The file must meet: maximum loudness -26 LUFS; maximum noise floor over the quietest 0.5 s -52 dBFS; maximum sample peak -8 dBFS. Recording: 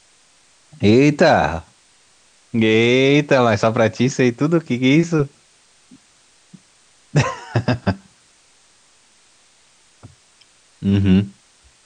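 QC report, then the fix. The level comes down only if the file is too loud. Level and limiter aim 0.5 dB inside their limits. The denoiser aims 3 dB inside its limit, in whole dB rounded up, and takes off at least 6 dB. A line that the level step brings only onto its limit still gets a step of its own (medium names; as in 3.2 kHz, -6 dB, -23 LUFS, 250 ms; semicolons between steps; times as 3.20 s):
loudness -17.0 LUFS: fail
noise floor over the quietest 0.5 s -54 dBFS: pass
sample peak -3.0 dBFS: fail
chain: trim -9.5 dB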